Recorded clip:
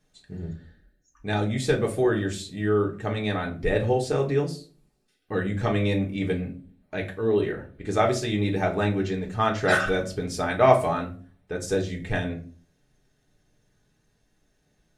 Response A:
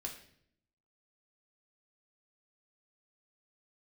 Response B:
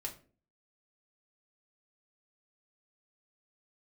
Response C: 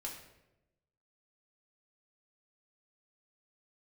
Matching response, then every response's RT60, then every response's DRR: B; 0.65, 0.40, 0.95 s; 0.0, -1.0, -2.5 dB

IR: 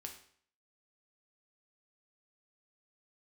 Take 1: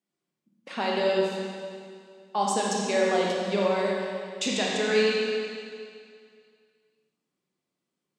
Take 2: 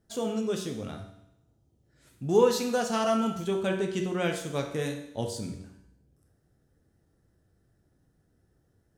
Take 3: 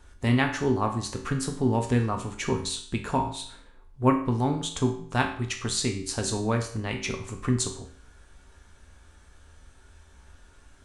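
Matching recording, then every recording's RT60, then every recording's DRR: 3; 2.2, 0.75, 0.55 s; -4.0, 2.5, 2.5 dB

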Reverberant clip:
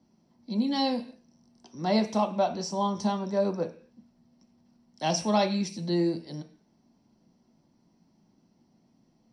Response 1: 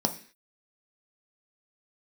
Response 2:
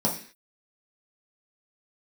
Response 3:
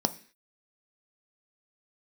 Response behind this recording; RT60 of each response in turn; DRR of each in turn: 1; 0.45, 0.45, 0.45 s; 5.0, -3.5, 10.0 dB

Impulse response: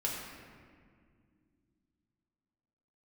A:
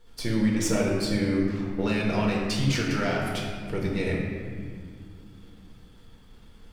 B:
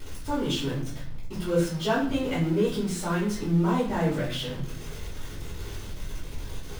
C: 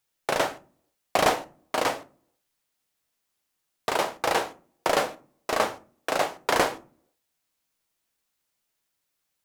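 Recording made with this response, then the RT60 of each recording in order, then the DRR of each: A; not exponential, 0.60 s, 0.45 s; -4.0, -11.0, 10.5 dB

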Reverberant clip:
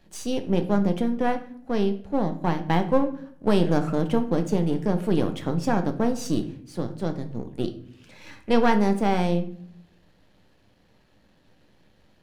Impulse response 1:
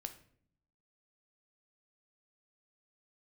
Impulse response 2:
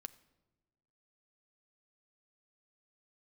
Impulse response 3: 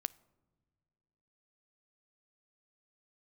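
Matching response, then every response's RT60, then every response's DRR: 1; 0.60 s, not exponential, not exponential; 7.0, 12.5, 19.5 dB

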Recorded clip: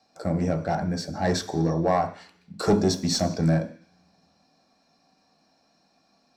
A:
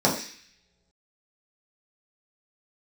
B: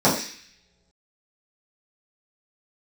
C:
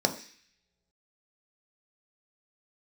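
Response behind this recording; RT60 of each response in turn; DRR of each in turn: C; not exponential, not exponential, not exponential; -5.0, -10.0, 4.5 dB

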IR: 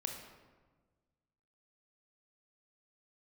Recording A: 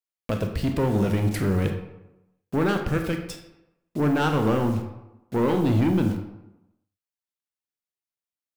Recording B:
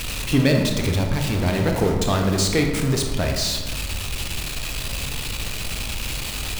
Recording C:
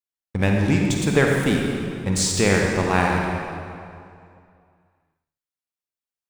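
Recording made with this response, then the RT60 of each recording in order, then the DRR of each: B; 0.95, 1.4, 2.4 s; 4.5, 2.5, -0.5 dB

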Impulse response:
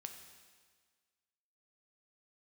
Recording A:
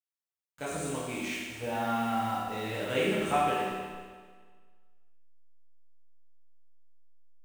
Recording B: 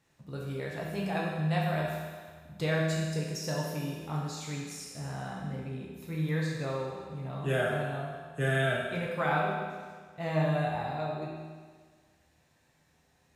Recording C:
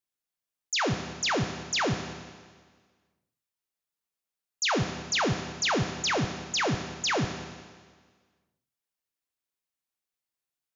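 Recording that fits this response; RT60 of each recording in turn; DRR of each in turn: C; 1.6, 1.6, 1.6 s; -9.0, -4.5, 5.0 dB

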